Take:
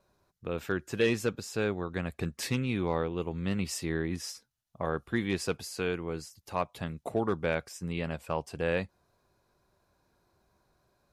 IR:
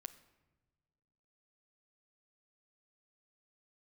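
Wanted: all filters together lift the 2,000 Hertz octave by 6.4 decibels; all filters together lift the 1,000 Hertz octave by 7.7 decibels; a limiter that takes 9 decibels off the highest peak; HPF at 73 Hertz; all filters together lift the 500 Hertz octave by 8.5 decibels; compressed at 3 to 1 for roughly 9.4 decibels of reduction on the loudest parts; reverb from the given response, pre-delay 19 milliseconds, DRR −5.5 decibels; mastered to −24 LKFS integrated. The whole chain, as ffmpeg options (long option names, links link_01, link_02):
-filter_complex "[0:a]highpass=73,equalizer=frequency=500:width_type=o:gain=8.5,equalizer=frequency=1000:width_type=o:gain=5.5,equalizer=frequency=2000:width_type=o:gain=6,acompressor=threshold=-26dB:ratio=3,alimiter=limit=-22dB:level=0:latency=1,asplit=2[link_01][link_02];[1:a]atrim=start_sample=2205,adelay=19[link_03];[link_02][link_03]afir=irnorm=-1:irlink=0,volume=10.5dB[link_04];[link_01][link_04]amix=inputs=2:normalize=0,volume=5dB"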